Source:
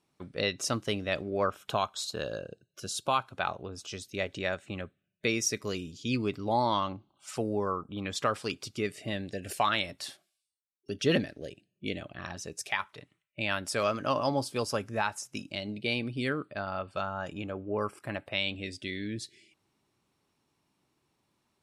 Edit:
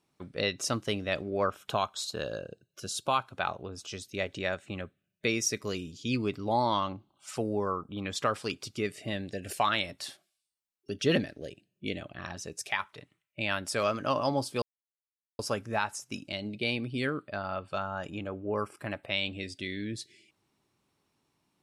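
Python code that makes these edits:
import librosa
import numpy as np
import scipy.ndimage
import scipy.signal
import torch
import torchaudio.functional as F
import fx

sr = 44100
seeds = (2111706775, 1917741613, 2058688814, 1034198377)

y = fx.edit(x, sr, fx.insert_silence(at_s=14.62, length_s=0.77), tone=tone)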